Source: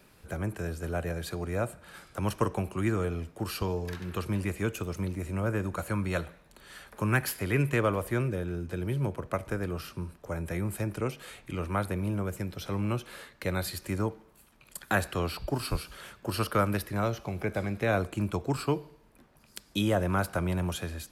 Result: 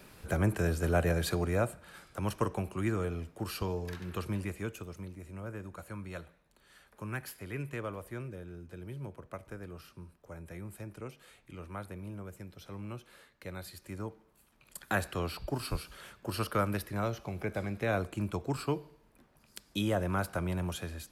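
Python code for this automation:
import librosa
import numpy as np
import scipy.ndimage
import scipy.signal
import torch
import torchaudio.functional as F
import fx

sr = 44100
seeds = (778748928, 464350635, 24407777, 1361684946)

y = fx.gain(x, sr, db=fx.line((1.31, 4.5), (1.94, -3.5), (4.26, -3.5), (5.13, -12.0), (13.73, -12.0), (14.77, -4.0)))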